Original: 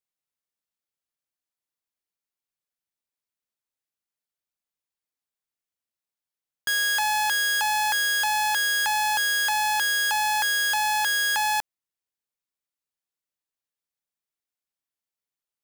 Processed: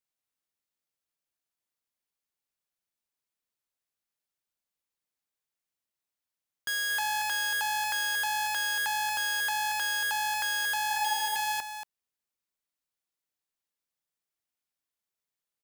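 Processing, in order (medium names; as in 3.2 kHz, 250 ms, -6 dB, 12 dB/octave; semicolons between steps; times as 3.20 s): peak limiter -25.5 dBFS, peak gain reduction 6.5 dB; spectral replace 10.93–11.36 s, 560–2000 Hz; delay 231 ms -9 dB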